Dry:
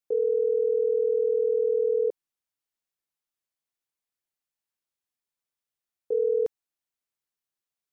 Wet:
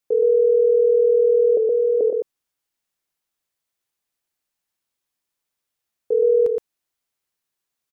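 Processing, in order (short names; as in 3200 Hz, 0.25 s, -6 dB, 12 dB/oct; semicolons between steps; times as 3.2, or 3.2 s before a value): 1.57–2.01 HPF 460 Hz 24 dB/oct; echo 0.119 s -4 dB; gain +6.5 dB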